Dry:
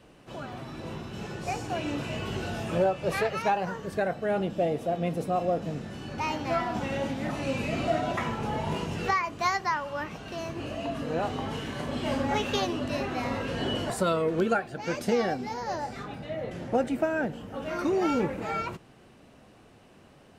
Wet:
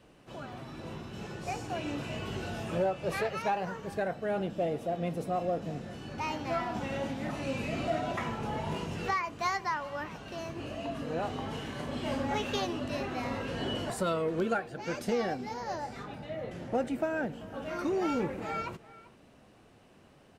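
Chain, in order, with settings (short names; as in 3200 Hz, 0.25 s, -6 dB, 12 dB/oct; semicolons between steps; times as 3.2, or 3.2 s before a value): in parallel at -9.5 dB: hard clip -23.5 dBFS, distortion -14 dB; on the sum: speakerphone echo 0.39 s, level -18 dB; gain -6.5 dB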